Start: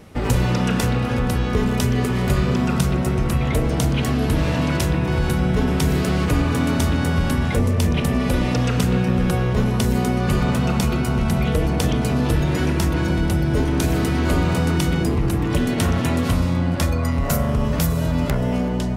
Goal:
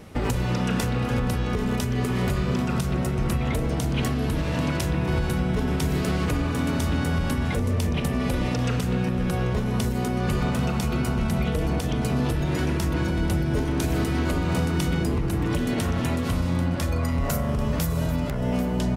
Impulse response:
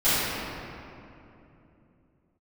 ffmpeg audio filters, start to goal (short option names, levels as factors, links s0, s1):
-filter_complex "[0:a]asplit=2[s0][s1];[s1]aecho=0:1:789:0.15[s2];[s0][s2]amix=inputs=2:normalize=0,alimiter=limit=0.178:level=0:latency=1:release=354"